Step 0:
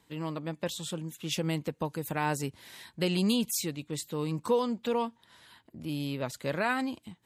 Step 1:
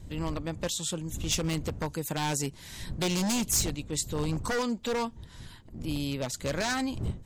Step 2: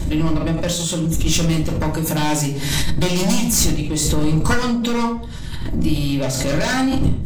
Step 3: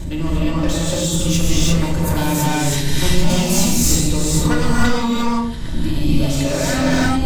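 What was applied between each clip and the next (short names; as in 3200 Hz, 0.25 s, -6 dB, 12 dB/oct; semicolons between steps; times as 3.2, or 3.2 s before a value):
wind noise 110 Hz -41 dBFS; wavefolder -25 dBFS; bell 6600 Hz +8.5 dB 0.95 oct; gain +1.5 dB
in parallel at -10 dB: wavefolder -31.5 dBFS; on the sum: shoebox room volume 670 m³, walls furnished, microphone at 2.5 m; backwards sustainer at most 29 dB/s; gain +5 dB
non-linear reverb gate 0.37 s rising, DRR -5 dB; gain -4.5 dB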